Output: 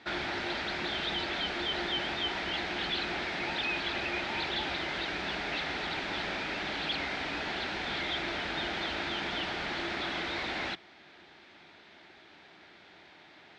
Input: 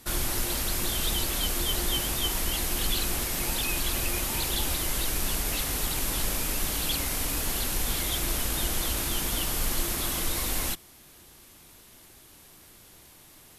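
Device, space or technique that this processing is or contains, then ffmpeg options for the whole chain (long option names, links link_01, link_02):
overdrive pedal into a guitar cabinet: -filter_complex "[0:a]asplit=2[link_01][link_02];[link_02]highpass=frequency=720:poles=1,volume=14dB,asoftclip=type=tanh:threshold=-14dB[link_03];[link_01][link_03]amix=inputs=2:normalize=0,lowpass=frequency=2900:poles=1,volume=-6dB,highpass=110,equalizer=frequency=120:width_type=q:width=4:gain=-9,equalizer=frequency=250:width_type=q:width=4:gain=-4,equalizer=frequency=500:width_type=q:width=4:gain=-7,equalizer=frequency=1100:width_type=q:width=4:gain=-10,equalizer=frequency=2900:width_type=q:width=4:gain=-6,lowpass=frequency=3700:width=0.5412,lowpass=frequency=3700:width=1.3066"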